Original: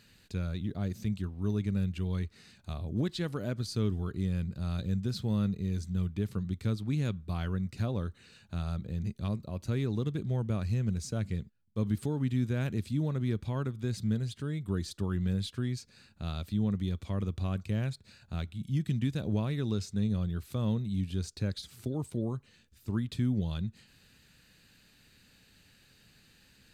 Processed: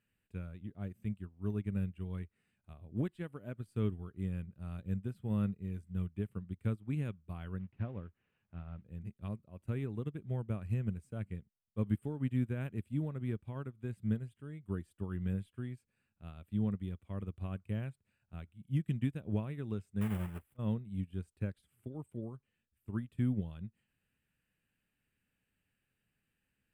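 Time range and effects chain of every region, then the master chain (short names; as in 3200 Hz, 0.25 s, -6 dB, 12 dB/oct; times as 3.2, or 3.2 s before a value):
7.59–8.85 CVSD 32 kbps + air absorption 240 m
20.01–20.59 block floating point 3-bit + bell 5700 Hz -3.5 dB 2.1 oct + auto swell 0.121 s
whole clip: band shelf 5000 Hz -15.5 dB 1.1 oct; notch 4300 Hz, Q 27; upward expander 2.5:1, over -39 dBFS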